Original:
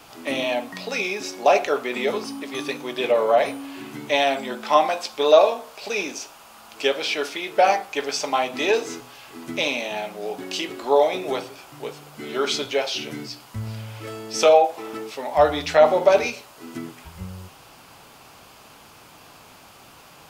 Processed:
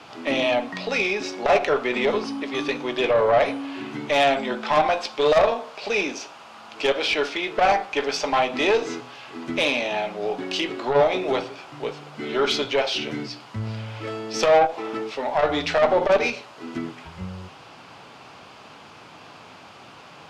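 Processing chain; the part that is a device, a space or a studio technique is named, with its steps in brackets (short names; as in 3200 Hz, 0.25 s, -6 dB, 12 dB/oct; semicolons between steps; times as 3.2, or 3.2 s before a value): valve radio (BPF 100–4300 Hz; tube stage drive 15 dB, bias 0.3; core saturation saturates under 280 Hz); gain +4.5 dB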